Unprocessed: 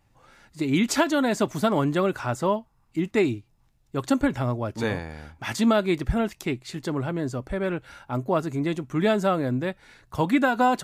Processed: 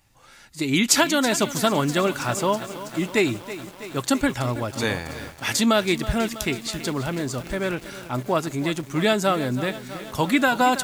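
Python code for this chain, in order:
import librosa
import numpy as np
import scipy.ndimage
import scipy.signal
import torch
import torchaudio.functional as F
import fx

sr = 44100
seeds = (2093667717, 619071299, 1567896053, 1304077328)

y = fx.high_shelf(x, sr, hz=2200.0, db=12.0)
y = fx.echo_crushed(y, sr, ms=325, feedback_pct=80, bits=6, wet_db=-13.5)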